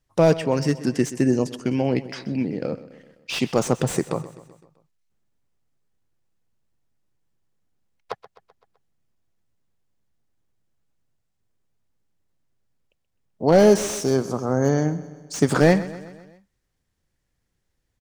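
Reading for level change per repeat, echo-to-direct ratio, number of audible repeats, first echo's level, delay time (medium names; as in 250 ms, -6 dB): -5.0 dB, -15.0 dB, 4, -16.5 dB, 128 ms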